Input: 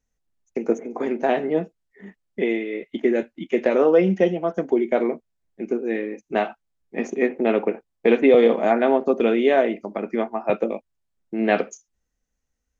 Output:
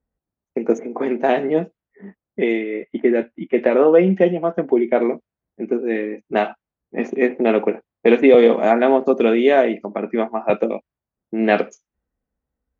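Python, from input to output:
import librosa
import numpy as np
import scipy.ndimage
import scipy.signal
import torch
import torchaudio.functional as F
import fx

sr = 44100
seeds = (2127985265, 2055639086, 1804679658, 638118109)

y = fx.lowpass(x, sr, hz=2900.0, slope=12, at=(2.61, 5.02))
y = fx.env_lowpass(y, sr, base_hz=1100.0, full_db=-15.0)
y = scipy.signal.sosfilt(scipy.signal.butter(2, 49.0, 'highpass', fs=sr, output='sos'), y)
y = F.gain(torch.from_numpy(y), 3.5).numpy()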